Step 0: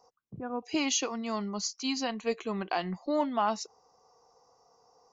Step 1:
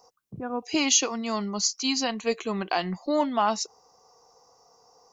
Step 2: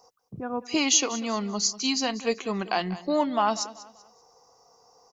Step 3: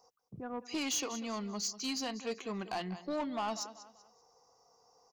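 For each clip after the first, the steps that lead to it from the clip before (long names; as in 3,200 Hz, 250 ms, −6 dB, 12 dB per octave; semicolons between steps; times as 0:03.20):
high-shelf EQ 4,300 Hz +7.5 dB; level +4 dB
repeating echo 192 ms, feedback 33%, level −16.5 dB
soft clipping −22 dBFS, distortion −11 dB; level −8 dB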